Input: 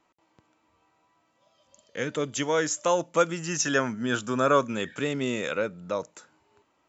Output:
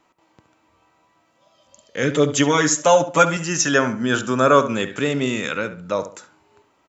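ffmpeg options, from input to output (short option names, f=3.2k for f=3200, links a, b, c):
-filter_complex "[0:a]asettb=1/sr,asplit=3[a][b][c];[a]atrim=end=2.024[d];[b]atrim=start=2.02:end=3.37,asetpts=PTS-STARTPTS,afade=t=in:d=0.004:c=qsin,afade=t=out:st=1.346:d=0.004:c=qsin,aecho=1:1:7.1:0.97,atrim=end_sample=59535[e];[c]atrim=start=3.366[f];[d][e]acrossfade=d=0.004:c1=hsin:c2=qsin[g];[g][f]acrossfade=d=0.004:c1=qsin:c2=hsin,asettb=1/sr,asplit=3[h][i][j];[h]atrim=end=5.264[k];[i]atrim=start=5.26:end=5.92,asetpts=PTS-STARTPTS,afade=t=in:d=0.004:c=qsin,afade=t=out:st=0.656:d=0.004:c=qsin,equalizer=f=540:w=1.4:g=-7.5[l];[j]atrim=start=5.916[m];[k][l]acrossfade=d=0.004:c1=hsin:c2=qsin[n];[n][m]acrossfade=d=0.004:c1=qsin:c2=hsin,asplit=2[o][p];[p]adelay=70,lowpass=f=2.4k:p=1,volume=-11dB,asplit=2[q][r];[r]adelay=70,lowpass=f=2.4k:p=1,volume=0.33,asplit=2[s][t];[t]adelay=70,lowpass=f=2.4k:p=1,volume=0.33,asplit=2[u][v];[v]adelay=70,lowpass=f=2.4k:p=1,volume=0.33[w];[o][q][s][u][w]amix=inputs=5:normalize=0,volume=7dB"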